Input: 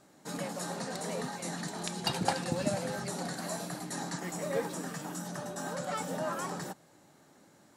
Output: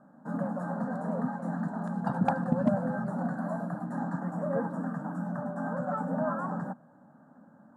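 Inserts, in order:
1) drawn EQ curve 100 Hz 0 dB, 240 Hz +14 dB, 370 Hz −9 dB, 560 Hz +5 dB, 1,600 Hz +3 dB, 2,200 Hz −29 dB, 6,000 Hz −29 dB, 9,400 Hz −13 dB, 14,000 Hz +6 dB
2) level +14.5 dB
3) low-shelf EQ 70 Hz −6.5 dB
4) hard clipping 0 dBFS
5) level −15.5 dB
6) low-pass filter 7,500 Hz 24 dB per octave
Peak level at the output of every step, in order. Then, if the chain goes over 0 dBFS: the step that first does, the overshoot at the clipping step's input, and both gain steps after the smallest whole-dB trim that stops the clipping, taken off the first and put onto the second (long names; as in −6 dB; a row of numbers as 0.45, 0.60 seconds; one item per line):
−9.0, +5.5, +5.0, 0.0, −15.5, −15.0 dBFS
step 2, 5.0 dB
step 2 +9.5 dB, step 5 −10.5 dB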